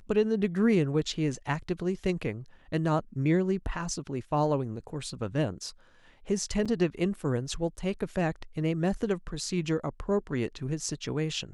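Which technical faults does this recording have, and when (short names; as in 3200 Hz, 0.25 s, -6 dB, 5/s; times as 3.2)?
6.65–6.66 gap 6.2 ms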